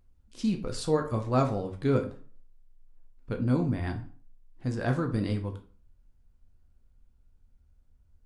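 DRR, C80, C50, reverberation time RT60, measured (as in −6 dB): 3.5 dB, 16.5 dB, 11.5 dB, 0.45 s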